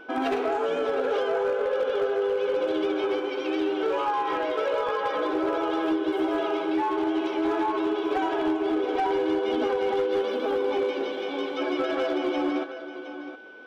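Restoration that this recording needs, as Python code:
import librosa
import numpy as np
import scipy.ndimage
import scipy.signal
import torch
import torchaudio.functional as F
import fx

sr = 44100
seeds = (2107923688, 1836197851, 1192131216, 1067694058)

y = fx.fix_declip(x, sr, threshold_db=-19.5)
y = fx.notch(y, sr, hz=1500.0, q=30.0)
y = fx.fix_echo_inverse(y, sr, delay_ms=716, level_db=-12.0)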